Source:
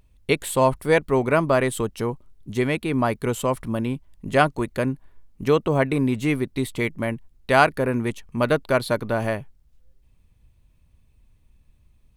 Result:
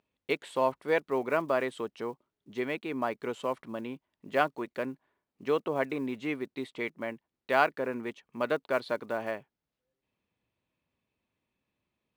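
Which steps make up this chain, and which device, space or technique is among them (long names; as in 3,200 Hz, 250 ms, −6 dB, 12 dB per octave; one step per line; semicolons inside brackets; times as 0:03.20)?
early digital voice recorder (band-pass filter 290–3,900 Hz; one scale factor per block 7 bits)
level −8 dB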